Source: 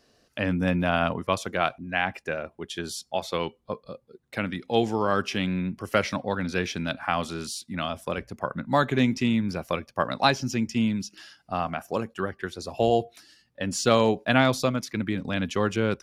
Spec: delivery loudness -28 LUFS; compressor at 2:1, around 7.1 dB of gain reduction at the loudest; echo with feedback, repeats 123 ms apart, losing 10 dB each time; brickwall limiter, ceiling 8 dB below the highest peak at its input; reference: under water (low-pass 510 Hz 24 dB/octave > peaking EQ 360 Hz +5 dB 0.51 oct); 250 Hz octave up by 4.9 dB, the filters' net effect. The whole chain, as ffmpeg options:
-af "equalizer=f=250:t=o:g=4.5,acompressor=threshold=0.0447:ratio=2,alimiter=limit=0.119:level=0:latency=1,lowpass=f=510:w=0.5412,lowpass=f=510:w=1.3066,equalizer=f=360:t=o:w=0.51:g=5,aecho=1:1:123|246|369|492:0.316|0.101|0.0324|0.0104,volume=1.5"

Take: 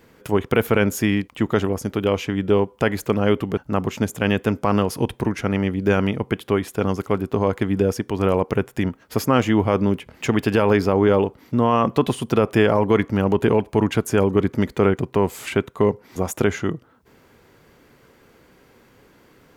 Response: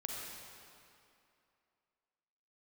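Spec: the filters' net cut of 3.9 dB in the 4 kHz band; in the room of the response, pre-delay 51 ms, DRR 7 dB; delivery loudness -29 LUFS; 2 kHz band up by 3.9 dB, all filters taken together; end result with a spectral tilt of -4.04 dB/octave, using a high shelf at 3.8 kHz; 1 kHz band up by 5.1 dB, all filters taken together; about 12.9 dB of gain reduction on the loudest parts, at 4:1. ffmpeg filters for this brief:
-filter_complex "[0:a]equalizer=f=1000:t=o:g=5.5,equalizer=f=2000:t=o:g=6,highshelf=f=3800:g=-7,equalizer=f=4000:t=o:g=-5.5,acompressor=threshold=0.0447:ratio=4,asplit=2[s0][s1];[1:a]atrim=start_sample=2205,adelay=51[s2];[s1][s2]afir=irnorm=-1:irlink=0,volume=0.422[s3];[s0][s3]amix=inputs=2:normalize=0,volume=1.12"

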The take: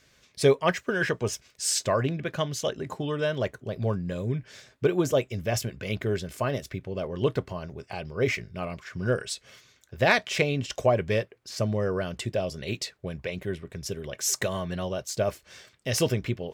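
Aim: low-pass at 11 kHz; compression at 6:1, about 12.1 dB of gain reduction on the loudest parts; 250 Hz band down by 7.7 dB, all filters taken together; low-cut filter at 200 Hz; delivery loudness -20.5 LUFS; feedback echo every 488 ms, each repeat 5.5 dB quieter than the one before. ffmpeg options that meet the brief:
-af "highpass=200,lowpass=11000,equalizer=f=250:t=o:g=-9,acompressor=threshold=0.0282:ratio=6,aecho=1:1:488|976|1464|1952|2440|2928|3416:0.531|0.281|0.149|0.079|0.0419|0.0222|0.0118,volume=5.62"

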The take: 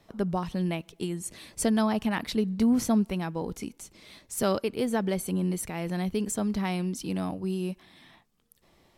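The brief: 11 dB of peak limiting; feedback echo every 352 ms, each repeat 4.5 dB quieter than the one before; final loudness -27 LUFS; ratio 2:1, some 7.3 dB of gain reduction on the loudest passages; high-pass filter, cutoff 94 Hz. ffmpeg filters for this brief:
-af "highpass=94,acompressor=threshold=0.0224:ratio=2,alimiter=level_in=1.88:limit=0.0631:level=0:latency=1,volume=0.531,aecho=1:1:352|704|1056|1408|1760|2112|2464|2816|3168:0.596|0.357|0.214|0.129|0.0772|0.0463|0.0278|0.0167|0.01,volume=2.99"

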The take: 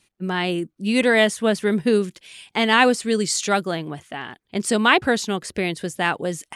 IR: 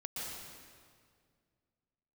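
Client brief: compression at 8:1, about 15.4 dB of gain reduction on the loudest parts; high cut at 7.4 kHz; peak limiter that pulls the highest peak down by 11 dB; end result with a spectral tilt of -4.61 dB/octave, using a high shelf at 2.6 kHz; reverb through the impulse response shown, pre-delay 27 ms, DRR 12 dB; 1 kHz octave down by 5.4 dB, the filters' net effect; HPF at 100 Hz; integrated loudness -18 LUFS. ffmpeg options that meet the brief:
-filter_complex "[0:a]highpass=100,lowpass=7400,equalizer=f=1000:t=o:g=-6.5,highshelf=f=2600:g=-6,acompressor=threshold=0.0282:ratio=8,alimiter=level_in=1.68:limit=0.0631:level=0:latency=1,volume=0.596,asplit=2[s0][s1];[1:a]atrim=start_sample=2205,adelay=27[s2];[s1][s2]afir=irnorm=-1:irlink=0,volume=0.224[s3];[s0][s3]amix=inputs=2:normalize=0,volume=10"

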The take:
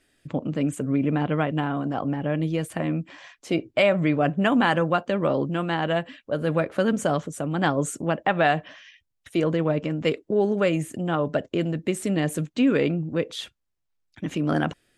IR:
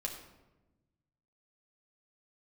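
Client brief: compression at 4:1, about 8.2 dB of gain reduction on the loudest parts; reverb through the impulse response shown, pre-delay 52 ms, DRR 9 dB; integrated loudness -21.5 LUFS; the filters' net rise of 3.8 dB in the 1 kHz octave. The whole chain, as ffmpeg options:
-filter_complex "[0:a]equalizer=f=1000:t=o:g=5.5,acompressor=threshold=0.0631:ratio=4,asplit=2[s0][s1];[1:a]atrim=start_sample=2205,adelay=52[s2];[s1][s2]afir=irnorm=-1:irlink=0,volume=0.335[s3];[s0][s3]amix=inputs=2:normalize=0,volume=2.24"

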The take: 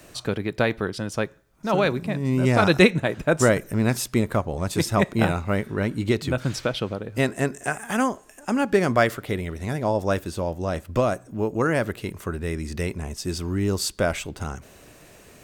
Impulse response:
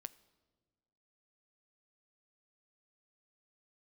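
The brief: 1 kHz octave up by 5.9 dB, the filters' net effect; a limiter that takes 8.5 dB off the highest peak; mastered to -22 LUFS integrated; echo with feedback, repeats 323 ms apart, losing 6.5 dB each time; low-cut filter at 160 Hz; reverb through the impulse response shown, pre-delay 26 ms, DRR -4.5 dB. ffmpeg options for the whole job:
-filter_complex "[0:a]highpass=160,equalizer=f=1000:t=o:g=8,alimiter=limit=0.398:level=0:latency=1,aecho=1:1:323|646|969|1292|1615|1938:0.473|0.222|0.105|0.0491|0.0231|0.0109,asplit=2[s0][s1];[1:a]atrim=start_sample=2205,adelay=26[s2];[s1][s2]afir=irnorm=-1:irlink=0,volume=2.99[s3];[s0][s3]amix=inputs=2:normalize=0,volume=0.596"

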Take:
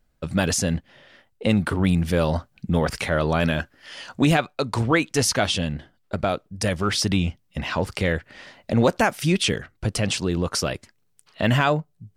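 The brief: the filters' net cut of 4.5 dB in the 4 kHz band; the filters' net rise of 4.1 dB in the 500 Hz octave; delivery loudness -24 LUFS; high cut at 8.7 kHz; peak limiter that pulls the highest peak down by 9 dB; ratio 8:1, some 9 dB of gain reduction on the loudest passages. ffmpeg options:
-af "lowpass=8700,equalizer=f=500:t=o:g=5,equalizer=f=4000:t=o:g=-6,acompressor=threshold=0.112:ratio=8,volume=2,alimiter=limit=0.224:level=0:latency=1"

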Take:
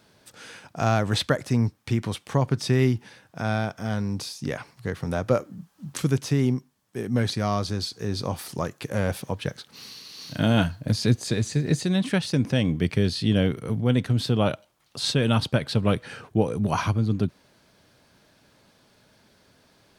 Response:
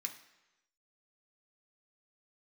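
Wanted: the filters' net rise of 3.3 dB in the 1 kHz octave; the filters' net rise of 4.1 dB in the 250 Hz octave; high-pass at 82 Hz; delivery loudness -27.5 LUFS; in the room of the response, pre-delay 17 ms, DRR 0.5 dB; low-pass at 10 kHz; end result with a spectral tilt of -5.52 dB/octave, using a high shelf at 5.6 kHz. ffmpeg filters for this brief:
-filter_complex "[0:a]highpass=82,lowpass=10000,equalizer=f=250:t=o:g=5,equalizer=f=1000:t=o:g=4,highshelf=f=5600:g=4.5,asplit=2[s0][s1];[1:a]atrim=start_sample=2205,adelay=17[s2];[s1][s2]afir=irnorm=-1:irlink=0,volume=1.12[s3];[s0][s3]amix=inputs=2:normalize=0,volume=0.501"

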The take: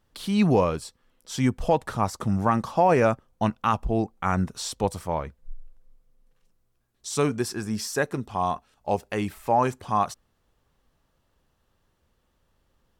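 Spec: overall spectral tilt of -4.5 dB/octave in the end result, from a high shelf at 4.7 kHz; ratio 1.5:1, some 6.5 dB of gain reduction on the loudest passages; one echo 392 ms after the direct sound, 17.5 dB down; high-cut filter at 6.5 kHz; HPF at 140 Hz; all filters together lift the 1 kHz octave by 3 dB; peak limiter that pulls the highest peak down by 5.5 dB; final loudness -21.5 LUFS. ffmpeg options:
-af "highpass=140,lowpass=6500,equalizer=f=1000:t=o:g=3.5,highshelf=f=4700:g=7,acompressor=threshold=0.0251:ratio=1.5,alimiter=limit=0.15:level=0:latency=1,aecho=1:1:392:0.133,volume=2.99"

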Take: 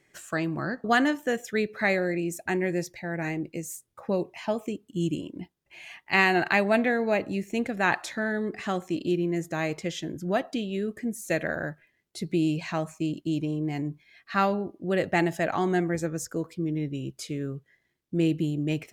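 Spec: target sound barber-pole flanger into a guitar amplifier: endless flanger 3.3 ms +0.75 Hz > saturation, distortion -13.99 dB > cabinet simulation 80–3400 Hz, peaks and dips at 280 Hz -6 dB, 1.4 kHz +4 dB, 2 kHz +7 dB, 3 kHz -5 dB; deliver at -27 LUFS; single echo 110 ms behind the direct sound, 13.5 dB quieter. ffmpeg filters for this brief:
-filter_complex "[0:a]aecho=1:1:110:0.211,asplit=2[s0][s1];[s1]adelay=3.3,afreqshift=0.75[s2];[s0][s2]amix=inputs=2:normalize=1,asoftclip=threshold=0.075,highpass=80,equalizer=f=280:t=q:w=4:g=-6,equalizer=f=1400:t=q:w=4:g=4,equalizer=f=2000:t=q:w=4:g=7,equalizer=f=3000:t=q:w=4:g=-5,lowpass=f=3400:w=0.5412,lowpass=f=3400:w=1.3066,volume=1.88"

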